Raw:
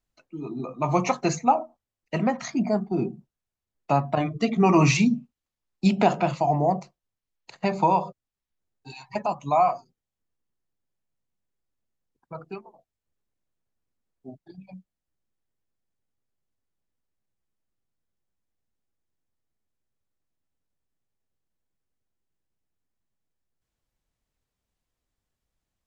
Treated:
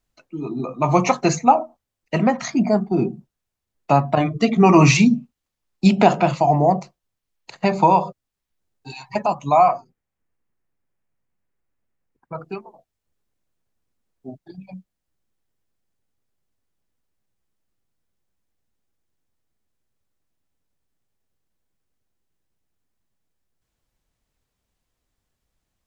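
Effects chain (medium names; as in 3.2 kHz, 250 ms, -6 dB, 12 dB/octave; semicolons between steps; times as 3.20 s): 9.68–12.38 s: resonant high shelf 2.8 kHz -6.5 dB, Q 1.5; trim +6 dB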